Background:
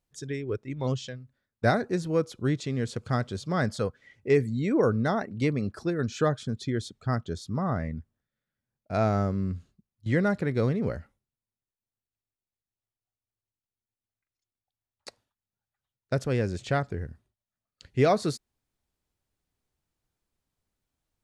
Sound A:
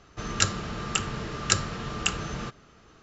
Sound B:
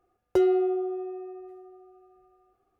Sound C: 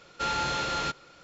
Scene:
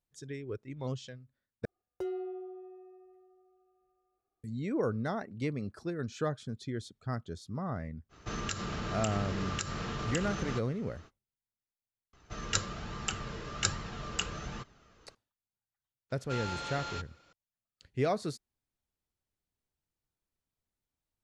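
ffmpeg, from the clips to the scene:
-filter_complex "[1:a]asplit=2[a][b];[0:a]volume=-8dB[c];[a]acompressor=threshold=-30dB:ratio=6:attack=3.2:release=140:knee=1:detection=peak[d];[b]flanger=delay=0.9:depth=1.2:regen=62:speed=1.2:shape=triangular[e];[c]asplit=2[f][g];[f]atrim=end=1.654[h];[2:a]atrim=end=2.79,asetpts=PTS-STARTPTS,volume=-15dB[i];[g]atrim=start=4.436[j];[d]atrim=end=3.02,asetpts=PTS-STARTPTS,volume=-1.5dB,afade=t=in:d=0.05,afade=t=out:st=2.97:d=0.05,adelay=8090[k];[e]atrim=end=3.02,asetpts=PTS-STARTPTS,volume=-2.5dB,afade=t=in:d=0.004:c=hsin,afade=t=out:st=3.016:d=0.004:c=hsin,adelay=12130[l];[3:a]atrim=end=1.23,asetpts=PTS-STARTPTS,volume=-10dB,afade=t=in:d=0.004:c=hsin,afade=t=out:st=1.226:d=0.004:c=hsin,adelay=16100[m];[h][i]acrossfade=d=0.004:c1=hsin:c2=hsin[n];[n][j]acrossfade=d=0.004:c1=hsin:c2=hsin[o];[o][k][l][m]amix=inputs=4:normalize=0"

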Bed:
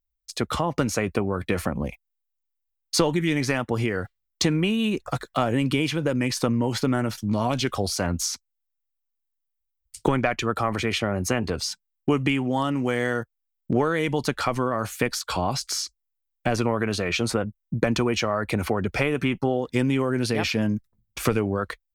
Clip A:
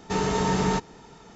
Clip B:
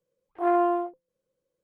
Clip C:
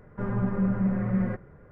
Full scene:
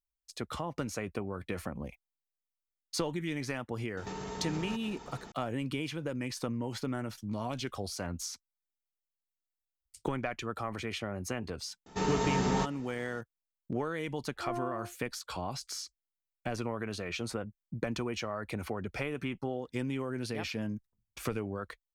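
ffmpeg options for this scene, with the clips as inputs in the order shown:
-filter_complex "[1:a]asplit=2[a][b];[0:a]volume=-12dB[c];[a]acompressor=threshold=-37dB:ratio=6:attack=3.2:release=140:knee=1:detection=peak,atrim=end=1.35,asetpts=PTS-STARTPTS,volume=-0.5dB,afade=t=in:d=0.004:c=hsin,afade=t=out:st=1.346:d=0.004:c=hsin,adelay=175077S[d];[b]atrim=end=1.35,asetpts=PTS-STARTPTS,volume=-6dB,afade=t=in:d=0.004:c=hsin,afade=t=out:st=1.346:d=0.004:c=hsin,adelay=523026S[e];[2:a]atrim=end=1.63,asetpts=PTS-STARTPTS,volume=-15.5dB,afade=t=in:d=0.004:c=hsin,afade=t=out:st=1.626:d=0.004:c=hsin,adelay=14010[f];[c][d][e][f]amix=inputs=4:normalize=0"

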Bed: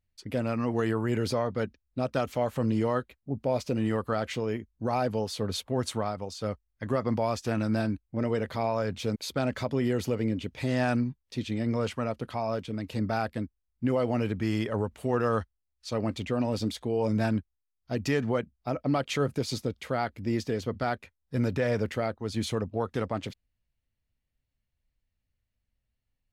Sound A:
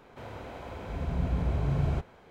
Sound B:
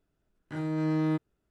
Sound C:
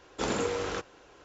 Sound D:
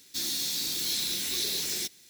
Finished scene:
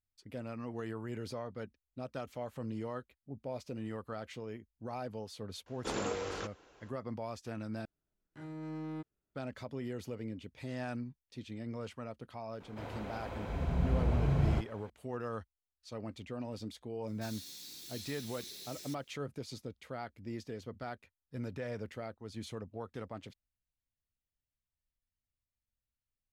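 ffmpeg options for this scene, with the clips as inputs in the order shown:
-filter_complex "[0:a]volume=-13dB[a];[2:a]asoftclip=type=tanh:threshold=-23dB[b];[a]asplit=2[c][d];[c]atrim=end=7.854[e];[b]atrim=end=1.5,asetpts=PTS-STARTPTS,volume=-12dB[f];[d]atrim=start=9.346[g];[3:a]atrim=end=1.24,asetpts=PTS-STARTPTS,volume=-6.5dB,afade=t=in:d=0.004:c=hsin,afade=t=out:st=1.236:d=0.004:c=hsin,adelay=5660[h];[1:a]atrim=end=2.3,asetpts=PTS-STARTPTS,volume=-1.5dB,afade=t=in:d=0.004:c=hsin,afade=t=out:st=2.296:d=0.004:c=hsin,adelay=12600[i];[4:a]atrim=end=2.09,asetpts=PTS-STARTPTS,volume=-18dB,afade=t=in:d=0.004:c=hsin,afade=t=out:st=2.086:d=0.004:c=hsin,adelay=17070[j];[e][f]acrossfade=d=0.004:c1=hsin:c2=hsin[k];[k][g]acrossfade=d=0.004:c1=hsin:c2=hsin[l];[l][h][i][j]amix=inputs=4:normalize=0"

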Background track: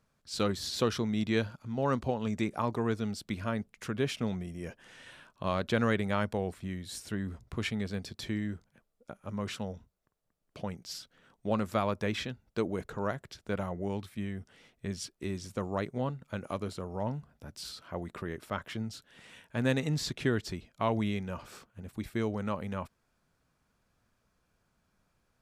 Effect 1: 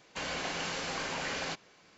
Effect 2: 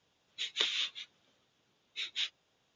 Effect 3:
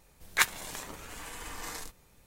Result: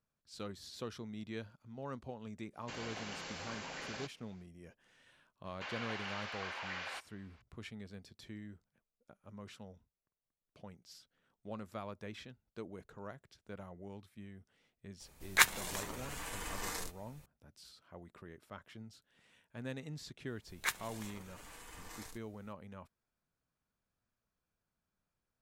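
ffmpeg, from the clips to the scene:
-filter_complex "[1:a]asplit=2[a][b];[3:a]asplit=2[c][d];[0:a]volume=-14.5dB[e];[b]highpass=800,lowpass=3.3k[f];[a]atrim=end=1.97,asetpts=PTS-STARTPTS,volume=-9.5dB,afade=t=in:d=0.1,afade=t=out:st=1.87:d=0.1,adelay=2520[g];[f]atrim=end=1.97,asetpts=PTS-STARTPTS,volume=-4.5dB,afade=t=in:d=0.004:c=hsin,afade=t=out:st=1.966:d=0.004:c=hsin,adelay=240345S[h];[c]atrim=end=2.26,asetpts=PTS-STARTPTS,volume=-0.5dB,afade=t=in:d=0.004:c=hsin,afade=t=out:st=2.256:d=0.004:c=hsin,adelay=15000[i];[d]atrim=end=2.26,asetpts=PTS-STARTPTS,volume=-10.5dB,afade=t=in:d=0.004:c=hsin,afade=t=out:st=2.256:d=0.004:c=hsin,adelay=20270[j];[e][g][h][i][j]amix=inputs=5:normalize=0"

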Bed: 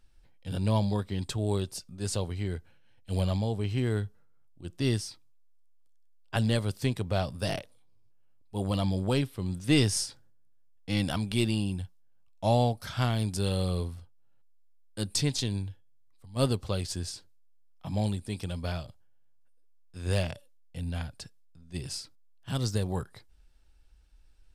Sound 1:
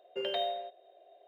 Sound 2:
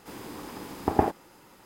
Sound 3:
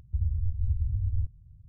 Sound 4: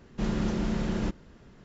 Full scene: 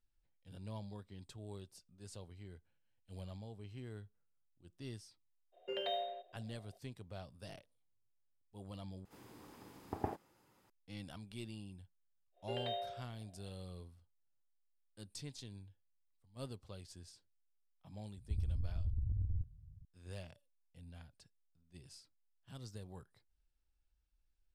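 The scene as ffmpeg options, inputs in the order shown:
-filter_complex "[1:a]asplit=2[a][b];[0:a]volume=-20dB[c];[2:a]equalizer=f=110:t=o:w=0.68:g=7.5[d];[3:a]acompressor=threshold=-27dB:ratio=6:attack=3.2:release=140:knee=1:detection=peak[e];[c]asplit=2[f][g];[f]atrim=end=9.054[h];[d]atrim=end=1.65,asetpts=PTS-STARTPTS,volume=-17dB[i];[g]atrim=start=10.696[j];[a]atrim=end=1.27,asetpts=PTS-STARTPTS,volume=-5.5dB,afade=t=in:d=0.02,afade=t=out:st=1.25:d=0.02,adelay=5520[k];[b]atrim=end=1.27,asetpts=PTS-STARTPTS,volume=-8dB,afade=t=in:d=0.1,afade=t=out:st=1.17:d=0.1,adelay=12320[l];[e]atrim=end=1.68,asetpts=PTS-STARTPTS,volume=-5dB,afade=t=in:d=0.004:c=hsin,afade=t=out:st=1.676:d=0.004:c=hsin,adelay=18170[m];[h][i]acrossfade=d=0.004:c1=hsin:c2=hsin[n];[n][j]acrossfade=d=0.004:c1=hsin:c2=hsin[o];[o][k][l][m]amix=inputs=4:normalize=0"

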